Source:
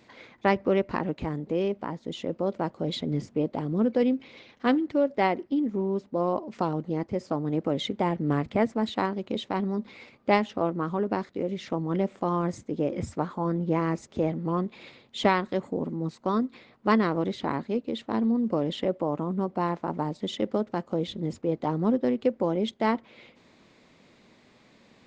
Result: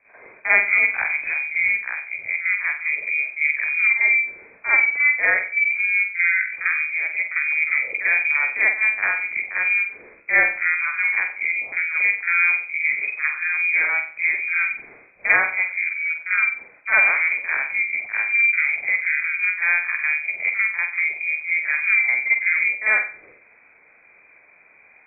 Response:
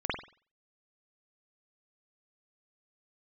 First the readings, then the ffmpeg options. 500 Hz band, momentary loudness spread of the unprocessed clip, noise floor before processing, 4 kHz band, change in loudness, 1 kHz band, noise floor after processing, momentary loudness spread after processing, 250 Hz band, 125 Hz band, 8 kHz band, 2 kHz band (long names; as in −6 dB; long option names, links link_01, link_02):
−12.5 dB, 7 LU, −59 dBFS, below −40 dB, +9.5 dB, −3.5 dB, −53 dBFS, 6 LU, below −25 dB, below −25 dB, can't be measured, +23.5 dB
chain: -filter_complex "[1:a]atrim=start_sample=2205[link_01];[0:a][link_01]afir=irnorm=-1:irlink=0,lowpass=frequency=2200:width_type=q:width=0.5098,lowpass=frequency=2200:width_type=q:width=0.6013,lowpass=frequency=2200:width_type=q:width=0.9,lowpass=frequency=2200:width_type=q:width=2.563,afreqshift=-2600,volume=-2.5dB"